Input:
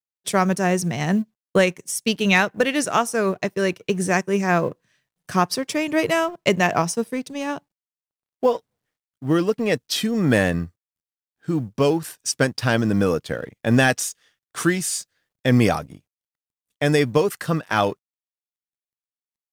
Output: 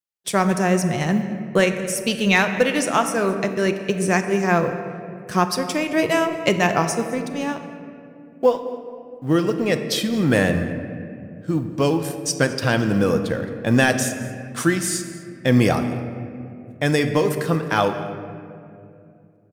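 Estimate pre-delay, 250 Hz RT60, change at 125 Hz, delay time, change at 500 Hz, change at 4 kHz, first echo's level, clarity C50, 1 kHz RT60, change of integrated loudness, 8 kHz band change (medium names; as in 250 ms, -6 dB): 3 ms, 3.5 s, +1.0 dB, 218 ms, +1.0 dB, +0.5 dB, -19.0 dB, 8.5 dB, 2.2 s, +0.5 dB, +0.5 dB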